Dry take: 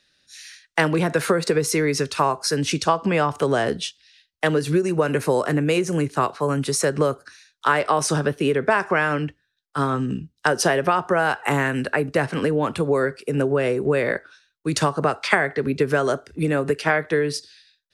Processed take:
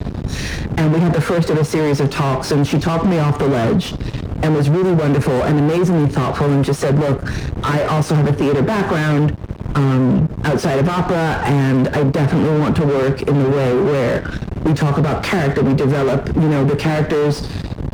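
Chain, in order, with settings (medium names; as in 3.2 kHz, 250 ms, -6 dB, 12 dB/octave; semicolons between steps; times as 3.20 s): added noise brown -45 dBFS; fuzz box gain 39 dB, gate -48 dBFS; high-pass 110 Hz 12 dB/octave; tilt EQ -4 dB/octave; compression 2:1, threshold -17 dBFS, peak gain reduction 7.5 dB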